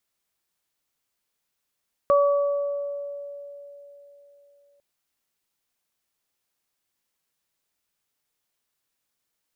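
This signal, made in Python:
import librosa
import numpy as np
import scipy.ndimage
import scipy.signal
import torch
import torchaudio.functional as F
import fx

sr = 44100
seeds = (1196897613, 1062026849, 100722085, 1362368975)

y = fx.additive(sr, length_s=2.7, hz=570.0, level_db=-15, upper_db=(-4.5,), decay_s=3.67, upper_decays_s=(1.43,))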